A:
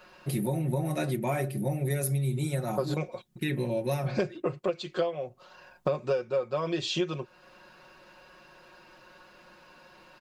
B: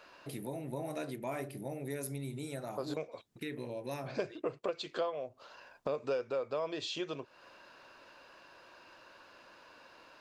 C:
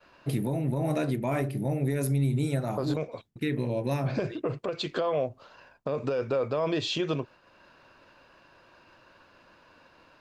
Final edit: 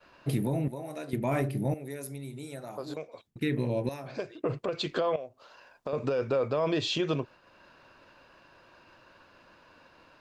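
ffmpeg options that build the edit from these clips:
-filter_complex "[1:a]asplit=4[s0][s1][s2][s3];[2:a]asplit=5[s4][s5][s6][s7][s8];[s4]atrim=end=0.682[s9];[s0]atrim=start=0.678:end=1.132[s10];[s5]atrim=start=1.128:end=1.742[s11];[s1]atrim=start=1.738:end=3.272[s12];[s6]atrim=start=3.268:end=3.892[s13];[s2]atrim=start=3.888:end=4.442[s14];[s7]atrim=start=4.438:end=5.162[s15];[s3]atrim=start=5.158:end=5.932[s16];[s8]atrim=start=5.928[s17];[s9][s10]acrossfade=d=0.004:c1=hsin:c2=hsin[s18];[s18][s11]acrossfade=d=0.004:c1=hsin:c2=hsin[s19];[s19][s12]acrossfade=d=0.004:c1=hsin:c2=hsin[s20];[s20][s13]acrossfade=d=0.004:c1=hsin:c2=hsin[s21];[s21][s14]acrossfade=d=0.004:c1=hsin:c2=hsin[s22];[s22][s15]acrossfade=d=0.004:c1=hsin:c2=hsin[s23];[s23][s16]acrossfade=d=0.004:c1=hsin:c2=hsin[s24];[s24][s17]acrossfade=d=0.004:c1=hsin:c2=hsin"

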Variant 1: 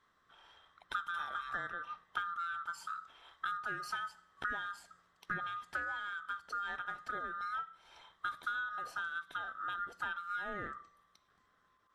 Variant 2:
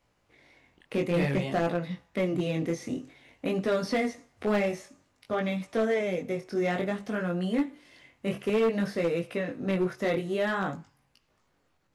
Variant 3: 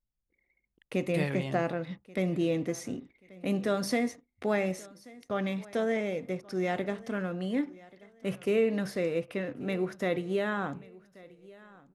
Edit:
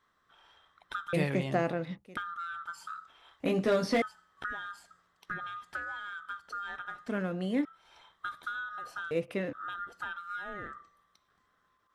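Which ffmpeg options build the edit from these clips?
-filter_complex "[2:a]asplit=3[s0][s1][s2];[0:a]asplit=5[s3][s4][s5][s6][s7];[s3]atrim=end=1.132[s8];[s0]atrim=start=1.128:end=2.172[s9];[s4]atrim=start=2.168:end=3.402[s10];[1:a]atrim=start=3.398:end=4.022[s11];[s5]atrim=start=4.018:end=7.082[s12];[s1]atrim=start=7.078:end=7.652[s13];[s6]atrim=start=7.648:end=9.112[s14];[s2]atrim=start=9.108:end=9.532[s15];[s7]atrim=start=9.528[s16];[s8][s9]acrossfade=d=0.004:c1=hsin:c2=hsin[s17];[s17][s10]acrossfade=d=0.004:c1=hsin:c2=hsin[s18];[s18][s11]acrossfade=d=0.004:c1=hsin:c2=hsin[s19];[s19][s12]acrossfade=d=0.004:c1=hsin:c2=hsin[s20];[s20][s13]acrossfade=d=0.004:c1=hsin:c2=hsin[s21];[s21][s14]acrossfade=d=0.004:c1=hsin:c2=hsin[s22];[s22][s15]acrossfade=d=0.004:c1=hsin:c2=hsin[s23];[s23][s16]acrossfade=d=0.004:c1=hsin:c2=hsin"

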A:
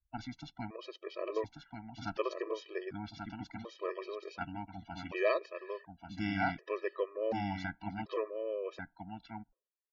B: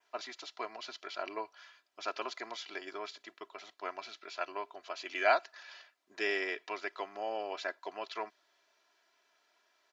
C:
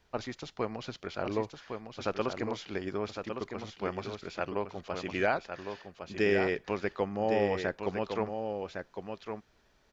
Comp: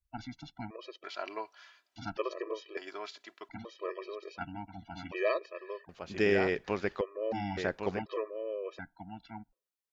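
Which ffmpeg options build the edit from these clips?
-filter_complex "[1:a]asplit=2[s0][s1];[2:a]asplit=2[s2][s3];[0:a]asplit=5[s4][s5][s6][s7][s8];[s4]atrim=end=1.042[s9];[s0]atrim=start=1.038:end=1.962[s10];[s5]atrim=start=1.958:end=2.772[s11];[s1]atrim=start=2.768:end=3.492[s12];[s6]atrim=start=3.488:end=5.892[s13];[s2]atrim=start=5.888:end=7.012[s14];[s7]atrim=start=7.008:end=7.572[s15];[s3]atrim=start=7.568:end=7.992[s16];[s8]atrim=start=7.988[s17];[s9][s10]acrossfade=d=0.004:c1=hsin:c2=hsin[s18];[s18][s11]acrossfade=d=0.004:c1=hsin:c2=hsin[s19];[s19][s12]acrossfade=d=0.004:c1=hsin:c2=hsin[s20];[s20][s13]acrossfade=d=0.004:c1=hsin:c2=hsin[s21];[s21][s14]acrossfade=d=0.004:c1=hsin:c2=hsin[s22];[s22][s15]acrossfade=d=0.004:c1=hsin:c2=hsin[s23];[s23][s16]acrossfade=d=0.004:c1=hsin:c2=hsin[s24];[s24][s17]acrossfade=d=0.004:c1=hsin:c2=hsin"

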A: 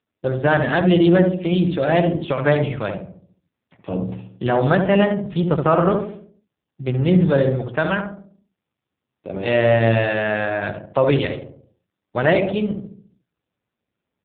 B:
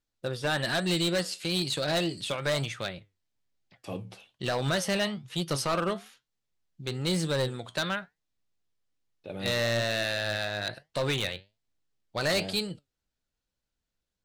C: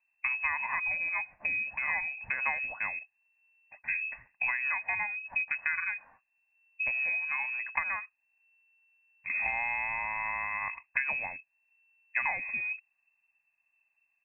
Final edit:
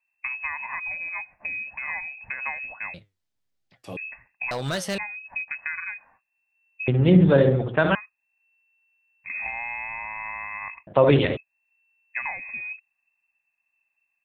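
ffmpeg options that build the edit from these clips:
-filter_complex "[1:a]asplit=2[s0][s1];[0:a]asplit=2[s2][s3];[2:a]asplit=5[s4][s5][s6][s7][s8];[s4]atrim=end=2.942[s9];[s0]atrim=start=2.938:end=3.972[s10];[s5]atrim=start=3.968:end=4.512[s11];[s1]atrim=start=4.508:end=4.982[s12];[s6]atrim=start=4.978:end=6.882[s13];[s2]atrim=start=6.878:end=7.952[s14];[s7]atrim=start=7.948:end=10.872[s15];[s3]atrim=start=10.868:end=11.372[s16];[s8]atrim=start=11.368[s17];[s9][s10]acrossfade=d=0.004:c1=hsin:c2=hsin[s18];[s18][s11]acrossfade=d=0.004:c1=hsin:c2=hsin[s19];[s19][s12]acrossfade=d=0.004:c1=hsin:c2=hsin[s20];[s20][s13]acrossfade=d=0.004:c1=hsin:c2=hsin[s21];[s21][s14]acrossfade=d=0.004:c1=hsin:c2=hsin[s22];[s22][s15]acrossfade=d=0.004:c1=hsin:c2=hsin[s23];[s23][s16]acrossfade=d=0.004:c1=hsin:c2=hsin[s24];[s24][s17]acrossfade=d=0.004:c1=hsin:c2=hsin"

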